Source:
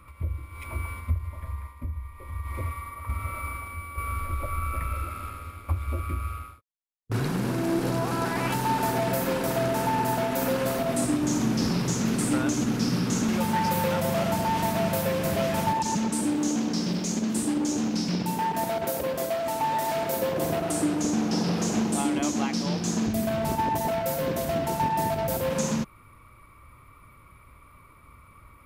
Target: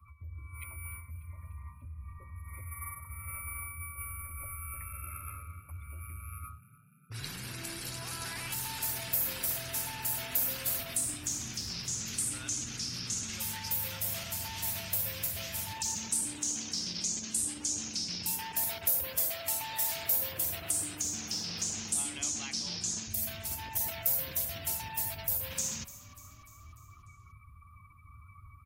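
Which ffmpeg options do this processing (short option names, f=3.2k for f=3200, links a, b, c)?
-filter_complex "[0:a]afftdn=nr=29:nf=-46,acrossover=split=80|1700[a][b][c];[a]acompressor=threshold=-36dB:ratio=4[d];[b]acompressor=threshold=-40dB:ratio=4[e];[c]acompressor=threshold=-41dB:ratio=4[f];[d][e][f]amix=inputs=3:normalize=0,equalizer=f=85:w=1.6:g=11.5,areverse,acompressor=threshold=-35dB:ratio=8,areverse,adynamicequalizer=threshold=0.00141:dfrequency=110:dqfactor=3.3:tfrequency=110:tqfactor=3.3:attack=5:release=100:ratio=0.375:range=1.5:mode=boostabove:tftype=bell,crystalizer=i=10:c=0,asplit=6[g][h][i][j][k][l];[h]adelay=296,afreqshift=33,volume=-18dB[m];[i]adelay=592,afreqshift=66,volume=-22.6dB[n];[j]adelay=888,afreqshift=99,volume=-27.2dB[o];[k]adelay=1184,afreqshift=132,volume=-31.7dB[p];[l]adelay=1480,afreqshift=165,volume=-36.3dB[q];[g][m][n][o][p][q]amix=inputs=6:normalize=0,volume=-7.5dB"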